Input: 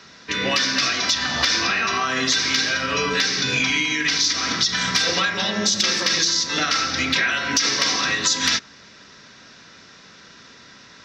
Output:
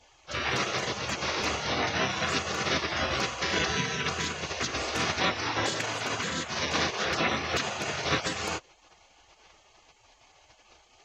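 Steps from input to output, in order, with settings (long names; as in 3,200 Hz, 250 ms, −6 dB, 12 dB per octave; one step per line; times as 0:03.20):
gate on every frequency bin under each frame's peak −15 dB weak
low-pass filter 1,700 Hz 6 dB per octave
level +6.5 dB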